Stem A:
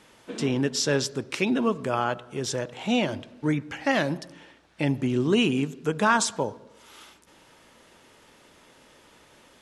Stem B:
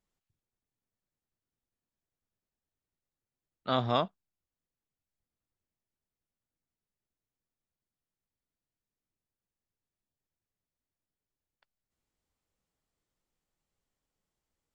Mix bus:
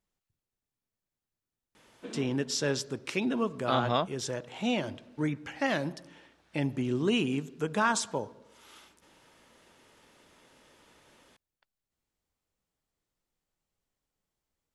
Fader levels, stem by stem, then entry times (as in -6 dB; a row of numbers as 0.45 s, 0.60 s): -5.5 dB, 0.0 dB; 1.75 s, 0.00 s